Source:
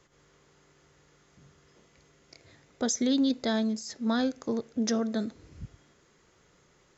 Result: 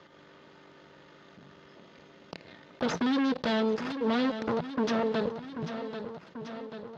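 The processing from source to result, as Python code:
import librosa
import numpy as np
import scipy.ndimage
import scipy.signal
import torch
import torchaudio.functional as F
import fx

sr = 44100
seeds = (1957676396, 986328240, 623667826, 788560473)

p1 = x + 0.59 * np.pad(x, (int(3.3 * sr / 1000.0), 0))[:len(x)]
p2 = fx.quant_dither(p1, sr, seeds[0], bits=6, dither='none')
p3 = p1 + (p2 * librosa.db_to_amplitude(-11.5))
p4 = fx.mod_noise(p3, sr, seeds[1], snr_db=31)
p5 = fx.cheby_harmonics(p4, sr, harmonics=(5, 7, 8), levels_db=(-28, -16, -14), full_scale_db=-12.0)
p6 = 10.0 ** (-24.0 / 20.0) * np.tanh(p5 / 10.0 ** (-24.0 / 20.0))
p7 = fx.cabinet(p6, sr, low_hz=150.0, low_slope=12, high_hz=4000.0, hz=(170.0, 330.0, 460.0, 2300.0), db=(10, -4, 4, -4))
p8 = p7 + fx.echo_feedback(p7, sr, ms=788, feedback_pct=42, wet_db=-18.0, dry=0)
y = fx.env_flatten(p8, sr, amount_pct=50)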